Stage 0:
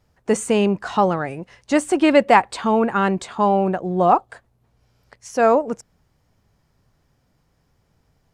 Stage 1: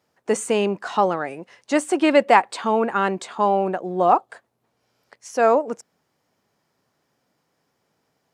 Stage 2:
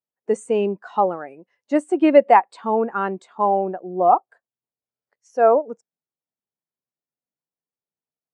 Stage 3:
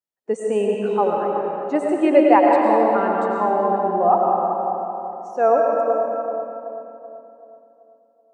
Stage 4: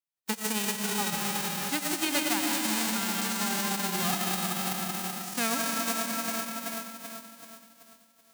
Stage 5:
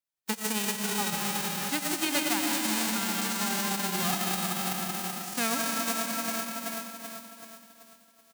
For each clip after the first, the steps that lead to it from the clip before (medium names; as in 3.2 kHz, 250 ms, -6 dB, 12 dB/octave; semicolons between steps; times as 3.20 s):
high-pass 260 Hz 12 dB/octave; trim -1 dB
spectral contrast expander 1.5:1
filtered feedback delay 381 ms, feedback 47%, low-pass 1.4 kHz, level -7 dB; reverberation RT60 2.6 s, pre-delay 65 ms, DRR -1 dB; trim -2.5 dB
formants flattened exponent 0.1; compression 3:1, threshold -25 dBFS, peak gain reduction 13 dB; trim -3.5 dB
delay 652 ms -18.5 dB